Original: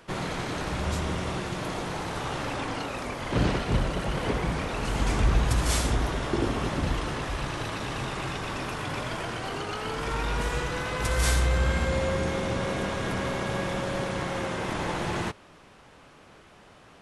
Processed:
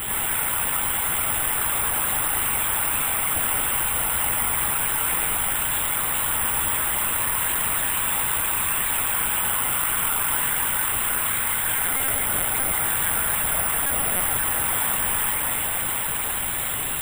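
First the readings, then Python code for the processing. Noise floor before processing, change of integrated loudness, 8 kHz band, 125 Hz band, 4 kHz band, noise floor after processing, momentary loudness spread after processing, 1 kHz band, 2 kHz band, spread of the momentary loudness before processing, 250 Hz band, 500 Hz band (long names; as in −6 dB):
−53 dBFS, +8.5 dB, +17.5 dB, −8.5 dB, +5.0 dB, −26 dBFS, 1 LU, +4.0 dB, +6.5 dB, 7 LU, −7.5 dB, −5.5 dB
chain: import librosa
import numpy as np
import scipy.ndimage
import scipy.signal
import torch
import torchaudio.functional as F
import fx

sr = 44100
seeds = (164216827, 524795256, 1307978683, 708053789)

y = scipy.signal.sosfilt(scipy.signal.butter(2, 1000.0, 'highpass', fs=sr, output='sos'), x)
y = fx.rider(y, sr, range_db=10, speed_s=0.5)
y = fx.quant_dither(y, sr, seeds[0], bits=6, dither='triangular')
y = fx.air_absorb(y, sr, metres=84.0)
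y = fx.doubler(y, sr, ms=22.0, db=-3)
y = fx.echo_alternate(y, sr, ms=212, hz=2300.0, feedback_pct=87, wet_db=-3.5)
y = fx.lpc_vocoder(y, sr, seeds[1], excitation='pitch_kept', order=10)
y = (np.kron(y[::4], np.eye(4)[0]) * 4)[:len(y)]
y = fx.env_flatten(y, sr, amount_pct=50)
y = F.gain(torch.from_numpy(y), 1.0).numpy()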